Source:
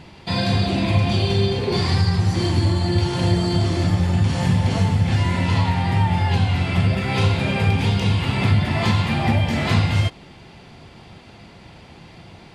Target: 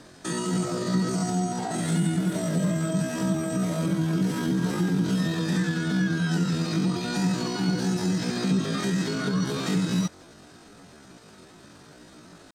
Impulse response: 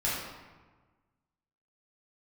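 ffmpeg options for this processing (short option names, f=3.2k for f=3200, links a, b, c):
-filter_complex "[0:a]lowpass=f=7.5k:w=0.5412,lowpass=f=7.5k:w=1.3066,asetrate=80880,aresample=44100,atempo=0.545254,acrossover=split=250[a][b];[b]acompressor=threshold=-23dB:ratio=6[c];[a][c]amix=inputs=2:normalize=0,volume=-5.5dB"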